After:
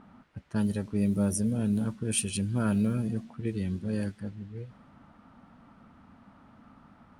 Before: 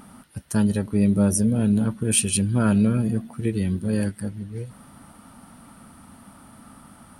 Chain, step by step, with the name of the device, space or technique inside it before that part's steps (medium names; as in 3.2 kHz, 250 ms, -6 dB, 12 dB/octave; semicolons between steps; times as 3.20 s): cassette deck with a dynamic noise filter (white noise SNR 30 dB; level-controlled noise filter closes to 1.8 kHz, open at -15 dBFS); trim -7.5 dB